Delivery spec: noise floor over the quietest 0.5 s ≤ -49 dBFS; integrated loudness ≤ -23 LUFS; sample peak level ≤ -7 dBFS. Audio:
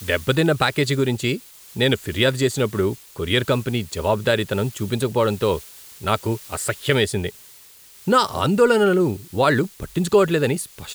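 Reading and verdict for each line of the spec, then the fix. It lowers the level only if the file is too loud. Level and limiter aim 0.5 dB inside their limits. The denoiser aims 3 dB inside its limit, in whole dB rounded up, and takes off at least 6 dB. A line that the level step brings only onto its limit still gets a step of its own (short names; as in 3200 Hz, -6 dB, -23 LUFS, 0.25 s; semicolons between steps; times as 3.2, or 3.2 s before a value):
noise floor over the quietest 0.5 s -47 dBFS: fail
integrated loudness -21.0 LUFS: fail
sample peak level -5.5 dBFS: fail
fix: gain -2.5 dB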